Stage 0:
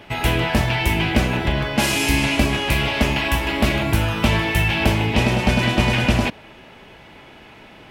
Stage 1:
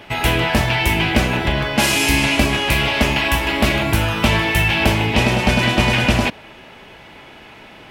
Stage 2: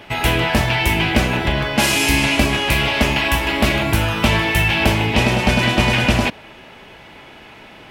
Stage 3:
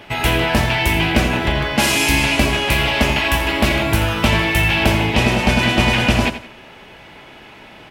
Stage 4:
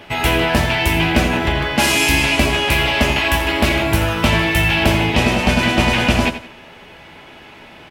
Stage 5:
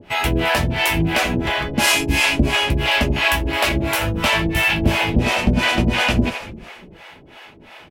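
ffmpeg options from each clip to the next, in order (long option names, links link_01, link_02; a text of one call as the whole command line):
ffmpeg -i in.wav -af "lowshelf=frequency=460:gain=-3.5,volume=4dB" out.wav
ffmpeg -i in.wav -af anull out.wav
ffmpeg -i in.wav -af "aecho=1:1:85|170|255:0.251|0.0779|0.0241" out.wav
ffmpeg -i in.wav -filter_complex "[0:a]asplit=2[link_01][link_02];[link_02]adelay=12,volume=-11dB[link_03];[link_01][link_03]amix=inputs=2:normalize=0" out.wav
ffmpeg -i in.wav -filter_complex "[0:a]asplit=5[link_01][link_02][link_03][link_04][link_05];[link_02]adelay=214,afreqshift=-140,volume=-15.5dB[link_06];[link_03]adelay=428,afreqshift=-280,volume=-22.4dB[link_07];[link_04]adelay=642,afreqshift=-420,volume=-29.4dB[link_08];[link_05]adelay=856,afreqshift=-560,volume=-36.3dB[link_09];[link_01][link_06][link_07][link_08][link_09]amix=inputs=5:normalize=0,acrossover=split=480[link_10][link_11];[link_10]aeval=exprs='val(0)*(1-1/2+1/2*cos(2*PI*2.9*n/s))':channel_layout=same[link_12];[link_11]aeval=exprs='val(0)*(1-1/2-1/2*cos(2*PI*2.9*n/s))':channel_layout=same[link_13];[link_12][link_13]amix=inputs=2:normalize=0,volume=2dB" out.wav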